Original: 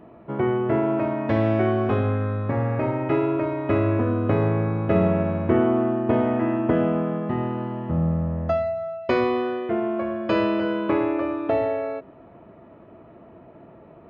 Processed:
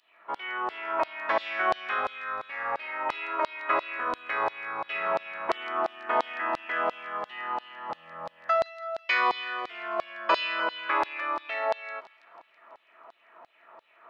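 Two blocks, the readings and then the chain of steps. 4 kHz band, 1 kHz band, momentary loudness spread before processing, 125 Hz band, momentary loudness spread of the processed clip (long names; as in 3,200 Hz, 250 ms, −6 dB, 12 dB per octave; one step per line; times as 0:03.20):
+5.5 dB, +1.5 dB, 5 LU, below −35 dB, 9 LU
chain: auto-filter high-pass saw down 2.9 Hz 830–4,300 Hz
on a send: delay with a high-pass on its return 164 ms, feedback 64%, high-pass 2,700 Hz, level −15.5 dB
on the sum: level +1.5 dB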